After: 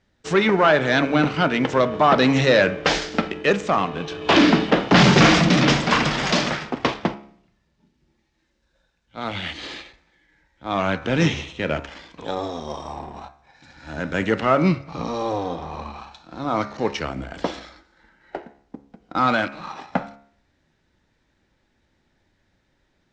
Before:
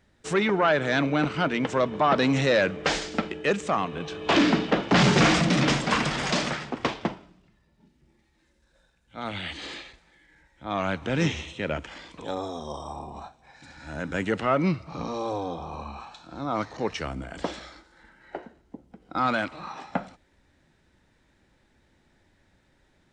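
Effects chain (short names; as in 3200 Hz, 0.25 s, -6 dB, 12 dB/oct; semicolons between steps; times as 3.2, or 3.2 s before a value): G.711 law mismatch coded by A; LPF 6600 Hz 24 dB/oct; de-hum 69.66 Hz, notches 38; gain +6.5 dB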